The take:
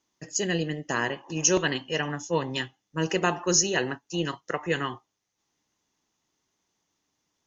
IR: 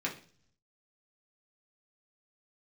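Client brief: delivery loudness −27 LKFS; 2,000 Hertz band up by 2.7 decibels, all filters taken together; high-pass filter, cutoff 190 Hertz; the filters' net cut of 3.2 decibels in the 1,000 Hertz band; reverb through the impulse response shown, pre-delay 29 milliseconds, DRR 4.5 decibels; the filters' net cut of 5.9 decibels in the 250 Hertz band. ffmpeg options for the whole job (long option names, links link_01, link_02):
-filter_complex "[0:a]highpass=190,equalizer=frequency=250:width_type=o:gain=-7.5,equalizer=frequency=1000:width_type=o:gain=-5,equalizer=frequency=2000:width_type=o:gain=5,asplit=2[link_01][link_02];[1:a]atrim=start_sample=2205,adelay=29[link_03];[link_02][link_03]afir=irnorm=-1:irlink=0,volume=-9.5dB[link_04];[link_01][link_04]amix=inputs=2:normalize=0,volume=-0.5dB"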